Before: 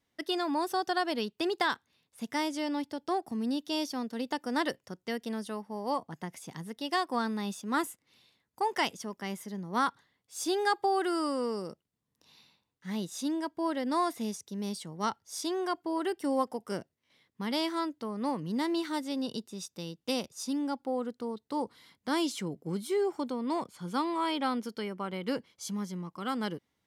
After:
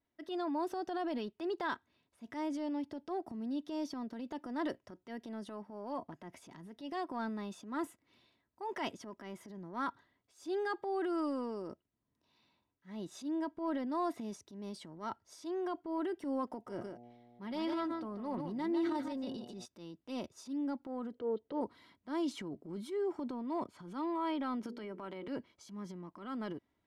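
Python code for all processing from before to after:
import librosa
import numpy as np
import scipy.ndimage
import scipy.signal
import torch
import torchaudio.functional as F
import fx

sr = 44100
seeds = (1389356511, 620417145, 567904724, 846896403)

y = fx.comb(x, sr, ms=5.5, depth=0.33, at=(16.66, 19.64), fade=0.02)
y = fx.dmg_buzz(y, sr, base_hz=120.0, harmonics=7, level_db=-55.0, tilt_db=-2, odd_only=False, at=(16.66, 19.64), fade=0.02)
y = fx.echo_single(y, sr, ms=146, db=-8.0, at=(16.66, 19.64), fade=0.02)
y = fx.chain(y, sr, fx.air_absorb(metres=160.0),
    fx.small_body(hz=(480.0, 3100.0), ring_ms=35, db=17), at=(21.13, 21.61))
y = fx.chain(y, sr, fx.highpass(hz=120.0, slope=12),
    fx.hum_notches(base_hz=60, count=9),
    fx.band_squash(depth_pct=70), at=(24.63, 25.28))
y = fx.lowpass(y, sr, hz=1400.0, slope=6)
y = y + 0.43 * np.pad(y, (int(3.1 * sr / 1000.0), 0))[:len(y)]
y = fx.transient(y, sr, attack_db=-7, sustain_db=7)
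y = y * librosa.db_to_amplitude(-6.0)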